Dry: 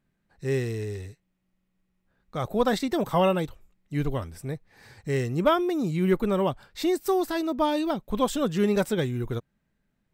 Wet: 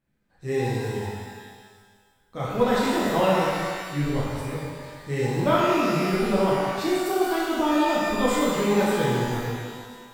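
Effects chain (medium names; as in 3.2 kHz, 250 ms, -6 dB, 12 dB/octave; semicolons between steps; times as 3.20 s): repeats whose band climbs or falls 174 ms, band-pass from 880 Hz, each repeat 0.7 oct, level -7 dB; pitch-shifted reverb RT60 1.5 s, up +12 st, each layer -8 dB, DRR -7.5 dB; trim -5.5 dB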